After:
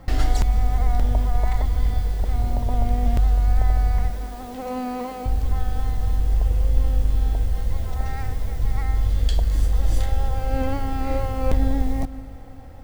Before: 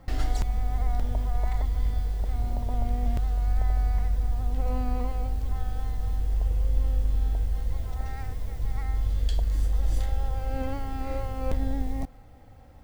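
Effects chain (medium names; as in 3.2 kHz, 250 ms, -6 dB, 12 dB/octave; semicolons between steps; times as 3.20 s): 4.10–5.26 s: steep high-pass 200 Hz; on a send: reverberation RT60 3.9 s, pre-delay 119 ms, DRR 15.5 dB; on the sum: trim +7 dB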